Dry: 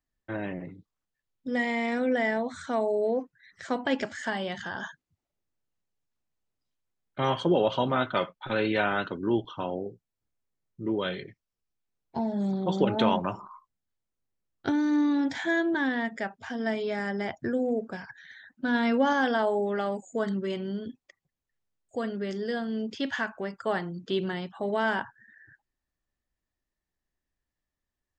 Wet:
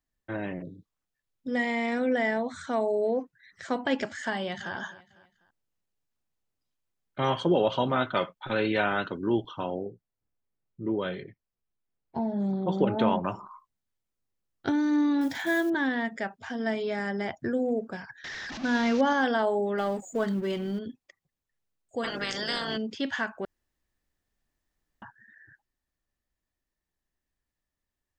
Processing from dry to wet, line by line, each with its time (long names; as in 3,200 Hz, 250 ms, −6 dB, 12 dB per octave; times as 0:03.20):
0:00.62–0:00.82: time-frequency box erased 680–3,300 Hz
0:04.35–0:04.75: delay throw 250 ms, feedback 40%, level −16.5 dB
0:09.85–0:13.25: low-pass filter 1,800 Hz 6 dB per octave
0:15.21–0:15.72: one scale factor per block 5 bits
0:18.24–0:19.01: linear delta modulator 32 kbit/s, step −32 dBFS
0:19.78–0:20.79: mu-law and A-law mismatch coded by mu
0:22.03–0:22.76: ceiling on every frequency bin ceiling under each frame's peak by 29 dB
0:23.45–0:25.02: fill with room tone